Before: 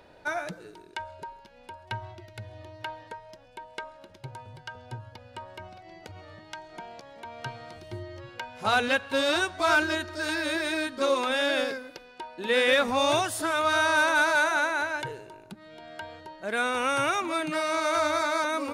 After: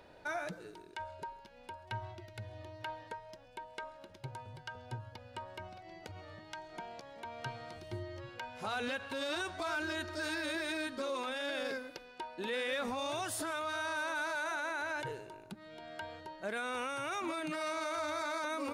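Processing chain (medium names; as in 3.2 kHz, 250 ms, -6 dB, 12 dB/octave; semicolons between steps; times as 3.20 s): peak limiter -25.5 dBFS, peak gain reduction 11 dB; trim -3.5 dB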